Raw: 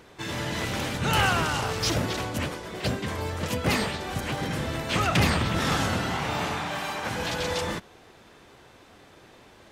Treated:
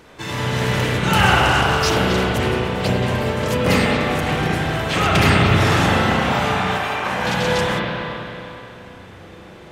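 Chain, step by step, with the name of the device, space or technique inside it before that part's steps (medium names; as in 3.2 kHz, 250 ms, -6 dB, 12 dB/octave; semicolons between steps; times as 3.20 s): dub delay into a spring reverb (filtered feedback delay 431 ms, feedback 82%, low-pass 820 Hz, level -21 dB; spring tank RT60 2.9 s, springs 32/43 ms, chirp 70 ms, DRR -4 dB); 6.78–7.27 s: tone controls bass -6 dB, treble -4 dB; trim +4 dB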